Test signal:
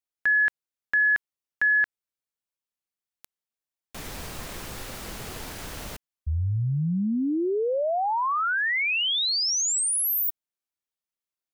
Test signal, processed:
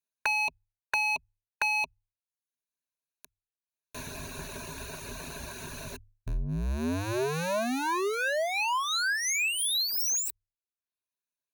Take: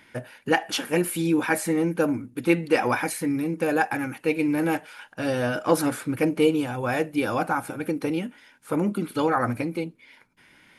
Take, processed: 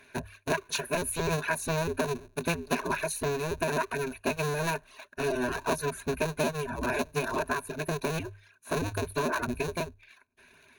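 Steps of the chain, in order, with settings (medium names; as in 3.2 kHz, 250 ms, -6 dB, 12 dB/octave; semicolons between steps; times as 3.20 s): cycle switcher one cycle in 2, inverted; reverb removal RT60 0.64 s; rippled EQ curve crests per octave 1.5, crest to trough 13 dB; compression 5:1, threshold -22 dBFS; hum notches 50/100 Hz; trim -3.5 dB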